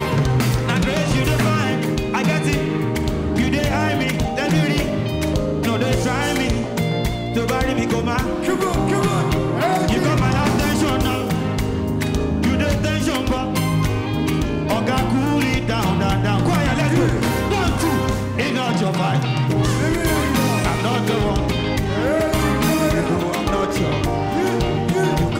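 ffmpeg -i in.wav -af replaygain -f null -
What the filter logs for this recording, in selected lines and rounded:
track_gain = +2.7 dB
track_peak = 0.221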